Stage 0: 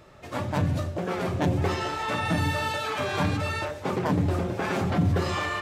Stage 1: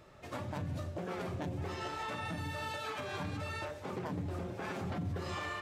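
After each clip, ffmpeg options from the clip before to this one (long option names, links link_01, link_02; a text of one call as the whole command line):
ffmpeg -i in.wav -af "alimiter=limit=-24dB:level=0:latency=1:release=337,volume=-6dB" out.wav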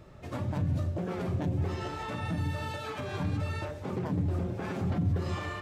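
ffmpeg -i in.wav -af "lowshelf=frequency=350:gain=11" out.wav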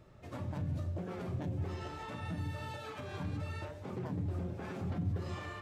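ffmpeg -i in.wav -af "flanger=delay=7.7:depth=5.9:regen=83:speed=0.74:shape=triangular,volume=-2.5dB" out.wav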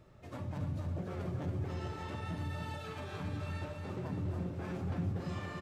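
ffmpeg -i in.wav -af "aecho=1:1:281|562|843|1124|1405|1686|1967:0.501|0.271|0.146|0.0789|0.0426|0.023|0.0124,volume=-1dB" out.wav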